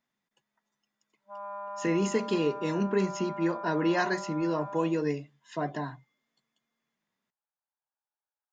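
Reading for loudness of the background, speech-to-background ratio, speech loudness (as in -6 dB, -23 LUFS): -40.0 LUFS, 10.0 dB, -30.0 LUFS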